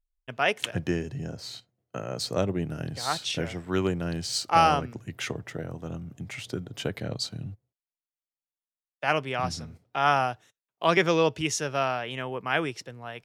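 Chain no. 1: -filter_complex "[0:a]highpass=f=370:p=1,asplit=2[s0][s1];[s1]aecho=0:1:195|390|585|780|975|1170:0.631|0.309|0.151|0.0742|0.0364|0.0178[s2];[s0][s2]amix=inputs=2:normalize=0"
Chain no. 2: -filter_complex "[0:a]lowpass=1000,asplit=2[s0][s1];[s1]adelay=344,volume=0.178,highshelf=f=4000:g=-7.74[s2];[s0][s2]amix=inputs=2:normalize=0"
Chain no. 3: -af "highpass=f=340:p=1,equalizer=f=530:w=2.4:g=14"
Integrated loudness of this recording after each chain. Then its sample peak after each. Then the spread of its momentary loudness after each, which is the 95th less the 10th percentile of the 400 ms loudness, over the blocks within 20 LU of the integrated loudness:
-28.0 LUFS, -30.5 LUFS, -24.0 LUFS; -8.0 dBFS, -9.0 dBFS, -3.0 dBFS; 15 LU, 15 LU, 18 LU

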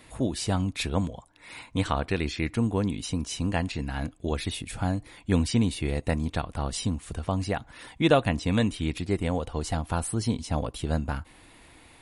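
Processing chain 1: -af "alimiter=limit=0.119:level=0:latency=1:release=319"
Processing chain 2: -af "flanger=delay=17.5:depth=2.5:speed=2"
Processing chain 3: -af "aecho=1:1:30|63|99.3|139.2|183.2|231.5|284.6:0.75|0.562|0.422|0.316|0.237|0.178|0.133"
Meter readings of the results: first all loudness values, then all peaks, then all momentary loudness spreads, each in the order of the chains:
-32.5 LUFS, -32.0 LUFS, -25.0 LUFS; -18.5 dBFS, -10.5 dBFS, -5.5 dBFS; 6 LU, 9 LU, 7 LU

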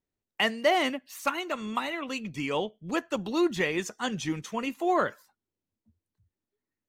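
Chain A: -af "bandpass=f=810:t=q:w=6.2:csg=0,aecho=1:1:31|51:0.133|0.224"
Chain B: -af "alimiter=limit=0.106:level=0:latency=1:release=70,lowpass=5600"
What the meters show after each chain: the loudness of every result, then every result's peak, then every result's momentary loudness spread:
-40.5 LUFS, -32.0 LUFS; -21.5 dBFS, -19.5 dBFS; 14 LU, 6 LU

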